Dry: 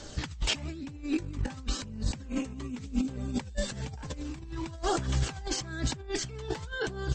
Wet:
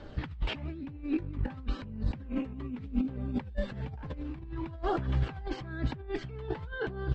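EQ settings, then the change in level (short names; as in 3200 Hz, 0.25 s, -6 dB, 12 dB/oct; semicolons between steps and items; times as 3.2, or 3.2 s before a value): air absorption 430 m; 0.0 dB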